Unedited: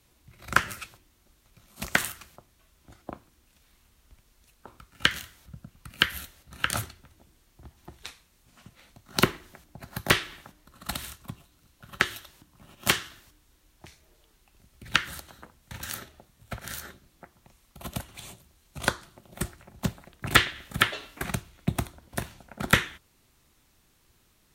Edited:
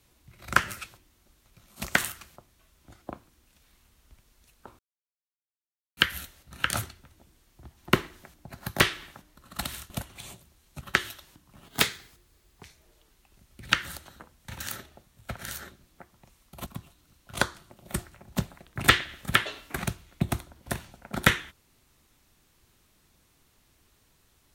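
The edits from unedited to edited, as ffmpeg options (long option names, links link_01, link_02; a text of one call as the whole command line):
ffmpeg -i in.wav -filter_complex "[0:a]asplit=10[link_01][link_02][link_03][link_04][link_05][link_06][link_07][link_08][link_09][link_10];[link_01]atrim=end=4.79,asetpts=PTS-STARTPTS,afade=type=out:start_time=4.786:duration=0.004:curve=hsin[link_11];[link_02]atrim=start=4.79:end=5.97,asetpts=PTS-STARTPTS,volume=0[link_12];[link_03]atrim=start=5.97:end=7.932,asetpts=PTS-STARTPTS,afade=type=in:duration=0.004:curve=hsin[link_13];[link_04]atrim=start=9.228:end=11.202[link_14];[link_05]atrim=start=17.888:end=18.802[link_15];[link_06]atrim=start=11.868:end=12.724[link_16];[link_07]atrim=start=12.72:end=13.86,asetpts=PTS-STARTPTS,asetrate=51597,aresample=44100,atrim=end_sample=42969,asetpts=PTS-STARTPTS[link_17];[link_08]atrim=start=13.856:end=17.892[link_18];[link_09]atrim=start=11.198:end=11.872[link_19];[link_10]atrim=start=18.798[link_20];[link_11][link_12][link_13]concat=n=3:v=0:a=1[link_21];[link_21][link_14]acrossfade=duration=0.004:curve1=hsin:curve2=hsin[link_22];[link_22][link_15]acrossfade=duration=0.004:curve1=hsin:curve2=hsin[link_23];[link_23][link_16]acrossfade=duration=0.004:curve1=hsin:curve2=hsin[link_24];[link_24][link_17]acrossfade=duration=0.004:curve1=hsin:curve2=hsin[link_25];[link_25][link_18]acrossfade=duration=0.004:curve1=hsin:curve2=hsin[link_26];[link_26][link_19]acrossfade=duration=0.004:curve1=hsin:curve2=hsin[link_27];[link_27][link_20]acrossfade=duration=0.004:curve1=hsin:curve2=hsin" out.wav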